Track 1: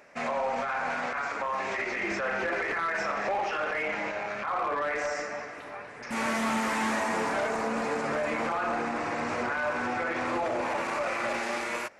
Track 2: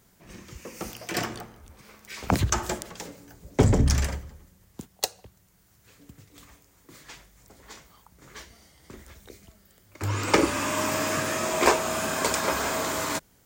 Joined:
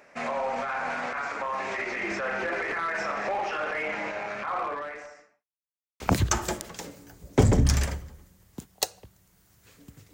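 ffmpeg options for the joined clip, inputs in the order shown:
-filter_complex "[0:a]apad=whole_dur=10.13,atrim=end=10.13,asplit=2[s0][s1];[s0]atrim=end=5.46,asetpts=PTS-STARTPTS,afade=t=out:st=4.59:d=0.87:c=qua[s2];[s1]atrim=start=5.46:end=6,asetpts=PTS-STARTPTS,volume=0[s3];[1:a]atrim=start=2.21:end=6.34,asetpts=PTS-STARTPTS,afade=t=in:d=0.004:c=hsin[s4];[s2][s3][s4]concat=n=3:v=0:a=1"

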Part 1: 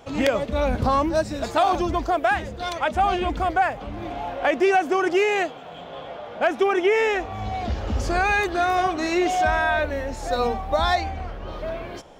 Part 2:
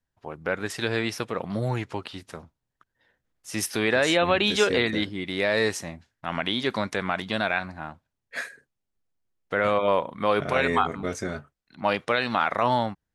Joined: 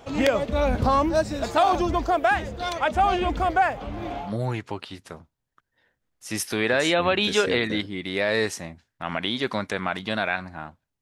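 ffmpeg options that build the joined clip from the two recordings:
-filter_complex "[0:a]apad=whole_dur=11.01,atrim=end=11.01,atrim=end=4.34,asetpts=PTS-STARTPTS[s0];[1:a]atrim=start=1.39:end=8.24,asetpts=PTS-STARTPTS[s1];[s0][s1]acrossfade=d=0.18:c1=tri:c2=tri"

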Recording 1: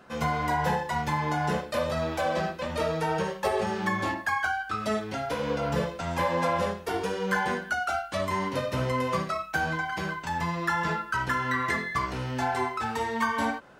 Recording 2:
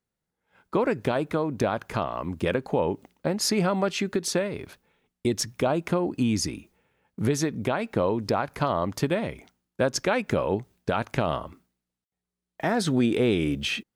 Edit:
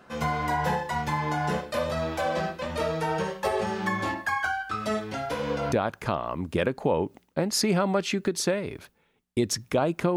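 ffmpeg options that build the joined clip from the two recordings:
-filter_complex "[0:a]apad=whole_dur=10.16,atrim=end=10.16,atrim=end=5.722[s0];[1:a]atrim=start=1.598:end=6.04[s1];[s0][s1]acrossfade=d=0.004:c1=hsin:c2=hsin"

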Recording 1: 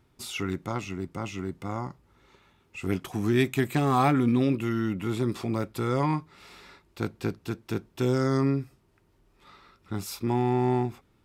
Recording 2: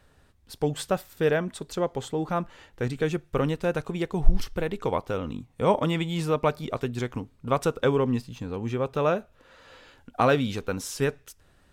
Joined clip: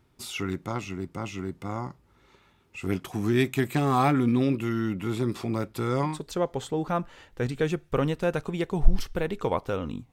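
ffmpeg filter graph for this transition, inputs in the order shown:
-filter_complex "[0:a]apad=whole_dur=10.12,atrim=end=10.12,atrim=end=6.21,asetpts=PTS-STARTPTS[s0];[1:a]atrim=start=1.42:end=5.53,asetpts=PTS-STARTPTS[s1];[s0][s1]acrossfade=d=0.2:c1=tri:c2=tri"

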